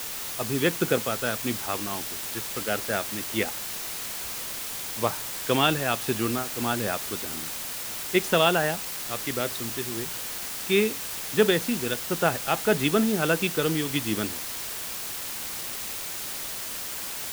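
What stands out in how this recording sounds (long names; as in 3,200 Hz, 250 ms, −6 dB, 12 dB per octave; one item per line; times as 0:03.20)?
tremolo triangle 1.5 Hz, depth 45%
a quantiser's noise floor 6 bits, dither triangular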